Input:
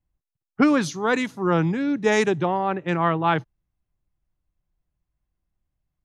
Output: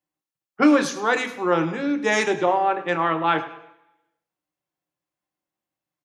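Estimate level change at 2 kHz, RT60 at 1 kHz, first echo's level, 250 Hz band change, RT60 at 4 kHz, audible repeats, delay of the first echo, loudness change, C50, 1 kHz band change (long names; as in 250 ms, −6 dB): +2.5 dB, 0.80 s, −17.5 dB, 0.0 dB, 0.80 s, 3, 104 ms, +1.0 dB, 11.5 dB, +2.5 dB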